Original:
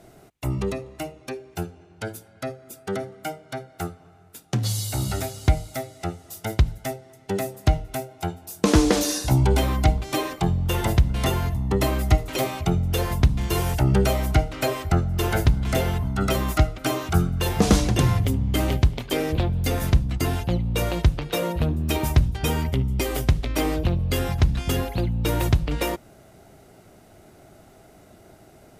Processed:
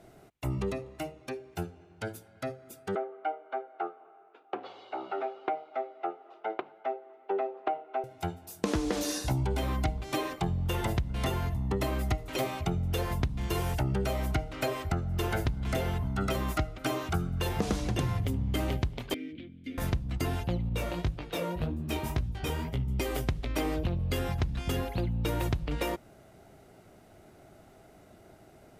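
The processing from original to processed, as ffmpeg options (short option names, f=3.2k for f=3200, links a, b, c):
-filter_complex "[0:a]asettb=1/sr,asplit=3[a][b][c];[a]atrim=end=2.954[d];[b]atrim=start=2.95:end=8.04,asetpts=PTS-STARTPTS,afade=t=in:d=0.004:c=qsin,afade=t=out:st=5.086:d=0.004:c=qsin,highpass=f=370:w=0.5412,highpass=f=370:w=1.3066,equalizer=f=380:t=q:w=4:g=6,equalizer=f=780:t=q:w=4:g=7,equalizer=f=1.2k:t=q:w=4:g=5,equalizer=f=1.9k:t=q:w=4:g=-7,lowpass=f=2.5k:w=0.5412,lowpass=f=2.5k:w=1.3066[e];[c]atrim=start=8.036[f];[d][e]acrossfade=d=0.004:c1=hsin:c2=qsin[g];[g][f]acrossfade=d=0.004:c1=qsin:c2=hsin,asettb=1/sr,asplit=3[h][i][j];[h]atrim=end=19.144[k];[i]atrim=start=19.14:end=19.78,asetpts=PTS-STARTPTS,afade=t=in:d=0.004:c=qsin,afade=t=out:st=0.636:d=0.004:c=qsin,asplit=3[l][m][n];[l]bandpass=f=270:t=q:w=8,volume=0dB[o];[m]bandpass=f=2.29k:t=q:w=8,volume=-6dB[p];[n]bandpass=f=3.01k:t=q:w=8,volume=-9dB[q];[o][p][q]amix=inputs=3:normalize=0[r];[j]atrim=start=19.776[s];[k][r]acrossfade=d=0.004:c1=hsin:c2=qsin[t];[t][s]acrossfade=d=0.004:c1=qsin:c2=hsin,asettb=1/sr,asplit=3[u][v][w];[u]atrim=end=20.694[x];[v]atrim=start=20.69:end=22.88,asetpts=PTS-STARTPTS,afade=t=in:d=0.004:c=qsin,afade=t=out:st=2.186:d=0.004:c=qsin,flanger=delay=16.5:depth=7.3:speed=1.9[y];[w]atrim=start=22.876[z];[x][y]acrossfade=d=0.004:c1=hsin:c2=qsin[aa];[aa][z]acrossfade=d=0.004:c1=qsin:c2=hsin,bass=f=250:g=-1,treble=f=4k:g=-4,acompressor=threshold=-21dB:ratio=6,volume=-4.5dB"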